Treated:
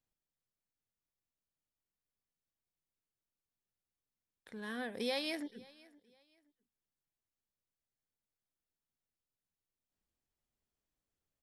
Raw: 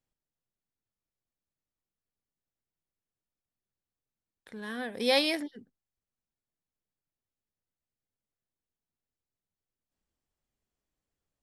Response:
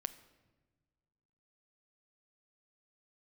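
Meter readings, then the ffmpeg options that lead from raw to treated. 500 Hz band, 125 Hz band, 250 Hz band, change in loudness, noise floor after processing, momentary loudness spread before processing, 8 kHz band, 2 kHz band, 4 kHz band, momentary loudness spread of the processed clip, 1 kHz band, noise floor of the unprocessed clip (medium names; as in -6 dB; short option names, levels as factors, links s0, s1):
-10.0 dB, no reading, -7.0 dB, -10.5 dB, under -85 dBFS, 17 LU, -9.5 dB, -8.5 dB, -11.0 dB, 18 LU, -10.0 dB, under -85 dBFS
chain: -af "acompressor=threshold=0.0316:ratio=4,aecho=1:1:520|1040:0.0708|0.0198,volume=0.631"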